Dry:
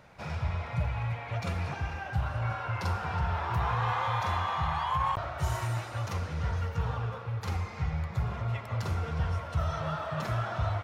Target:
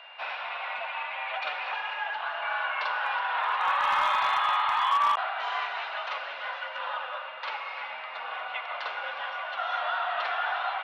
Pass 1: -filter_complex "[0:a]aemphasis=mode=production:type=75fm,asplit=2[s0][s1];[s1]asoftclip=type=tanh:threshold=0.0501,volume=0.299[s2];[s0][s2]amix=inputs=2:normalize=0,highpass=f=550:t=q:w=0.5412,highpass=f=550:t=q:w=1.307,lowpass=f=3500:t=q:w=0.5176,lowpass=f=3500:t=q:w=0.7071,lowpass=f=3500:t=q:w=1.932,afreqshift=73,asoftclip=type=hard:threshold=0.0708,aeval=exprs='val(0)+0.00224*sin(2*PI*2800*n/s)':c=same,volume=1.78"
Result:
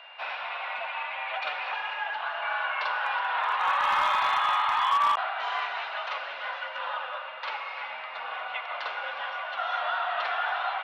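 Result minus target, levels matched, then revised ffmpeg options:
saturation: distortion -6 dB
-filter_complex "[0:a]aemphasis=mode=production:type=75fm,asplit=2[s0][s1];[s1]asoftclip=type=tanh:threshold=0.0237,volume=0.299[s2];[s0][s2]amix=inputs=2:normalize=0,highpass=f=550:t=q:w=0.5412,highpass=f=550:t=q:w=1.307,lowpass=f=3500:t=q:w=0.5176,lowpass=f=3500:t=q:w=0.7071,lowpass=f=3500:t=q:w=1.932,afreqshift=73,asoftclip=type=hard:threshold=0.0708,aeval=exprs='val(0)+0.00224*sin(2*PI*2800*n/s)':c=same,volume=1.78"

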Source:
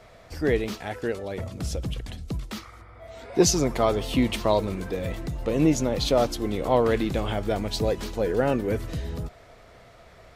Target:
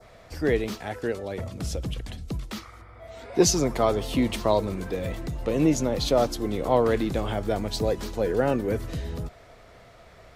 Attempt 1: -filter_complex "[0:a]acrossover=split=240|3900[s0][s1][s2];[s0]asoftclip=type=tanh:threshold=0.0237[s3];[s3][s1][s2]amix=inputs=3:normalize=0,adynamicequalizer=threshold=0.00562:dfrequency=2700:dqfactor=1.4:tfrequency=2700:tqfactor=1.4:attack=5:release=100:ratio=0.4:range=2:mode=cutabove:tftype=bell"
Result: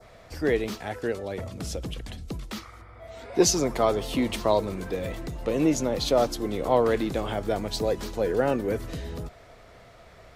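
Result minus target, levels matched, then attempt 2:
saturation: distortion +11 dB
-filter_complex "[0:a]acrossover=split=240|3900[s0][s1][s2];[s0]asoftclip=type=tanh:threshold=0.0794[s3];[s3][s1][s2]amix=inputs=3:normalize=0,adynamicequalizer=threshold=0.00562:dfrequency=2700:dqfactor=1.4:tfrequency=2700:tqfactor=1.4:attack=5:release=100:ratio=0.4:range=2:mode=cutabove:tftype=bell"

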